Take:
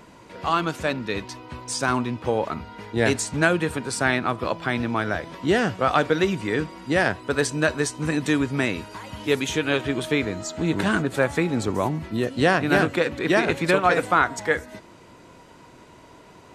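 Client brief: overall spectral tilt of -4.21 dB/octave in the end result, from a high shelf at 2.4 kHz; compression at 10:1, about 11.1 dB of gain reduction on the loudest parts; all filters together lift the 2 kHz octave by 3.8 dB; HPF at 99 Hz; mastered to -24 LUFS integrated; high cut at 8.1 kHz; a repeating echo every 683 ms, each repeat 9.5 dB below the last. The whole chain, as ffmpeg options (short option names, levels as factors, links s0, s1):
-af "highpass=99,lowpass=8100,equalizer=f=2000:t=o:g=8,highshelf=f=2400:g=-6.5,acompressor=threshold=0.0631:ratio=10,aecho=1:1:683|1366|2049|2732:0.335|0.111|0.0365|0.012,volume=1.88"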